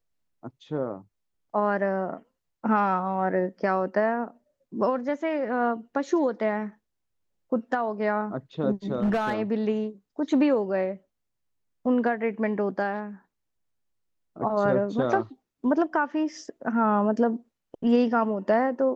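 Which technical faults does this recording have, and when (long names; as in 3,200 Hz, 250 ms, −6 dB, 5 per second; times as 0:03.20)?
0:08.92–0:09.34: clipping −20.5 dBFS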